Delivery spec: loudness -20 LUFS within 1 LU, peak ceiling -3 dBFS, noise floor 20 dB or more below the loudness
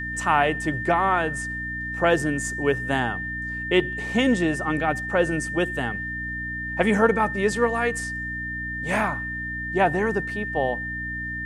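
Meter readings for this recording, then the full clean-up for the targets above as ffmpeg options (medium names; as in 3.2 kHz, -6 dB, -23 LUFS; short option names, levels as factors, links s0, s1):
hum 60 Hz; highest harmonic 300 Hz; hum level -34 dBFS; steady tone 1.8 kHz; tone level -29 dBFS; loudness -24.0 LUFS; peak level -4.5 dBFS; loudness target -20.0 LUFS
-> -af "bandreject=f=60:t=h:w=4,bandreject=f=120:t=h:w=4,bandreject=f=180:t=h:w=4,bandreject=f=240:t=h:w=4,bandreject=f=300:t=h:w=4"
-af "bandreject=f=1800:w=30"
-af "volume=1.58,alimiter=limit=0.708:level=0:latency=1"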